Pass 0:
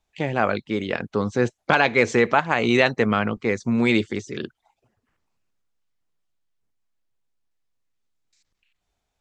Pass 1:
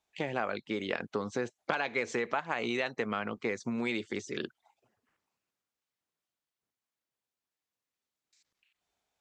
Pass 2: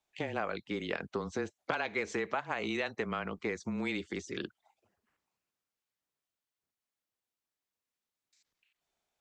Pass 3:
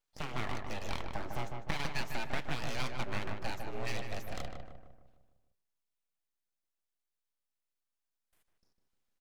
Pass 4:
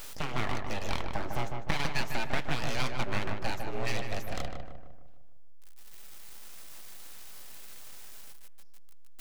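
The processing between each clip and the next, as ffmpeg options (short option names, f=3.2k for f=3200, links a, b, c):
-af "acompressor=threshold=-23dB:ratio=12,highpass=f=300:p=1,volume=-3dB"
-af "afreqshift=-21,volume=-2dB"
-filter_complex "[0:a]flanger=delay=4.5:depth=4.7:regen=-71:speed=0.47:shape=sinusoidal,aeval=exprs='abs(val(0))':c=same,asplit=2[a][b];[b]adelay=152,lowpass=f=1.7k:p=1,volume=-4dB,asplit=2[c][d];[d]adelay=152,lowpass=f=1.7k:p=1,volume=0.53,asplit=2[e][f];[f]adelay=152,lowpass=f=1.7k:p=1,volume=0.53,asplit=2[g][h];[h]adelay=152,lowpass=f=1.7k:p=1,volume=0.53,asplit=2[i][j];[j]adelay=152,lowpass=f=1.7k:p=1,volume=0.53,asplit=2[k][l];[l]adelay=152,lowpass=f=1.7k:p=1,volume=0.53,asplit=2[m][n];[n]adelay=152,lowpass=f=1.7k:p=1,volume=0.53[o];[c][e][g][i][k][m][o]amix=inputs=7:normalize=0[p];[a][p]amix=inputs=2:normalize=0,volume=3.5dB"
-af "aeval=exprs='val(0)+0.5*0.0112*sgn(val(0))':c=same,volume=5dB"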